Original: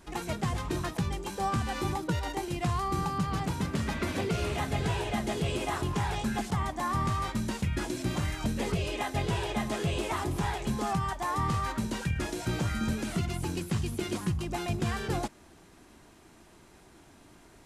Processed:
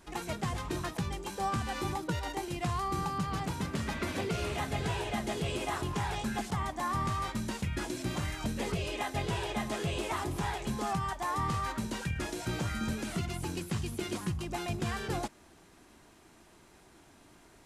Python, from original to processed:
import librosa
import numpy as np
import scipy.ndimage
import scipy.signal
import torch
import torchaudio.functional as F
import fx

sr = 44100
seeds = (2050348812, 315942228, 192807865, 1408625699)

y = fx.low_shelf(x, sr, hz=360.0, db=-3.0)
y = y * 10.0 ** (-1.5 / 20.0)